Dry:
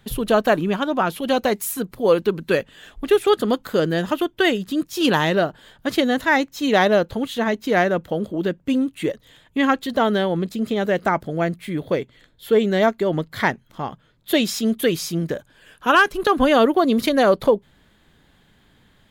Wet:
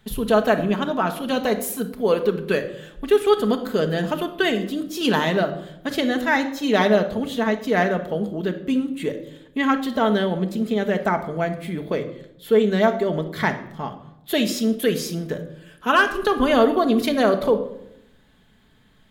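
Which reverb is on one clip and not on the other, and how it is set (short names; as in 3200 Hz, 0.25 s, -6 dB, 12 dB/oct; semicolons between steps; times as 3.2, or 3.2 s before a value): shoebox room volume 2100 m³, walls furnished, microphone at 1.5 m; gain -3 dB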